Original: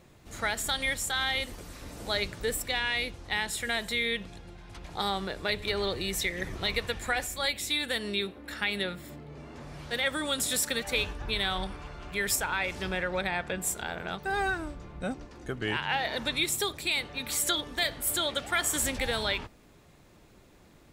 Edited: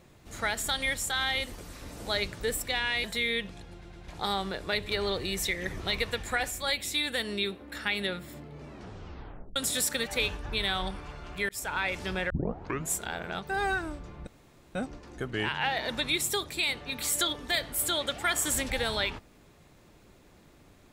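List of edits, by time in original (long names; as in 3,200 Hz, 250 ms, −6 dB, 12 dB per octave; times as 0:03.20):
0:03.04–0:03.80: remove
0:04.50: stutter in place 0.11 s, 3 plays
0:09.43: tape stop 0.89 s
0:12.25–0:12.52: fade in
0:13.06: tape start 0.62 s
0:15.03: splice in room tone 0.48 s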